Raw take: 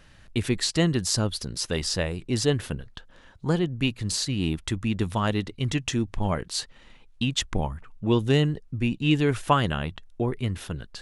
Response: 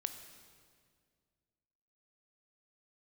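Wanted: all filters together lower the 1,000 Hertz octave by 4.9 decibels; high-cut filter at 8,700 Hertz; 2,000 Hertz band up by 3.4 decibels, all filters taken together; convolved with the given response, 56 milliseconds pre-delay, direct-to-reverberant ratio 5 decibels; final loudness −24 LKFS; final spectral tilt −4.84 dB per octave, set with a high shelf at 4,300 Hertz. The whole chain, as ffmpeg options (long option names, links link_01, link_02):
-filter_complex "[0:a]lowpass=8700,equalizer=frequency=1000:width_type=o:gain=-8,equalizer=frequency=2000:width_type=o:gain=8,highshelf=frequency=4300:gain=-5.5,asplit=2[link_01][link_02];[1:a]atrim=start_sample=2205,adelay=56[link_03];[link_02][link_03]afir=irnorm=-1:irlink=0,volume=-4dB[link_04];[link_01][link_04]amix=inputs=2:normalize=0,volume=2dB"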